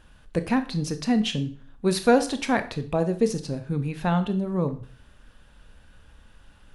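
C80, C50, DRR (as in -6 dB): 18.5 dB, 14.0 dB, 9.0 dB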